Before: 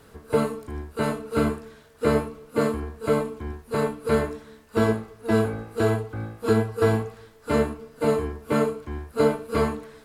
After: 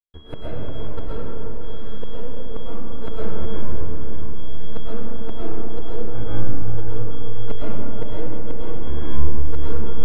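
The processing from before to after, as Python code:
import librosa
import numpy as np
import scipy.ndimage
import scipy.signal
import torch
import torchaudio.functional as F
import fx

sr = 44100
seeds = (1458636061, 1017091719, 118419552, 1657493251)

y = np.where(x < 0.0, 10.0 ** (-12.0 / 20.0) * x, x)
y = fx.low_shelf(y, sr, hz=250.0, db=-7.0)
y = fx.hum_notches(y, sr, base_hz=50, count=3)
y = fx.rider(y, sr, range_db=5, speed_s=0.5)
y = fx.riaa(y, sr, side='playback')
y = y + 10.0 ** (-47.0 / 20.0) * np.sin(2.0 * np.pi * 3300.0 * np.arange(len(y)) / sr)
y = fx.gate_flip(y, sr, shuts_db=-15.0, range_db=-29)
y = fx.step_gate(y, sr, bpm=108, pattern='.xxxx..xx.', floor_db=-60.0, edge_ms=4.5)
y = fx.echo_diffused(y, sr, ms=581, feedback_pct=41, wet_db=-8.0)
y = fx.rev_freeverb(y, sr, rt60_s=3.4, hf_ratio=0.3, predelay_ms=80, drr_db=-8.5)
y = y * librosa.db_to_amplitude(-2.5)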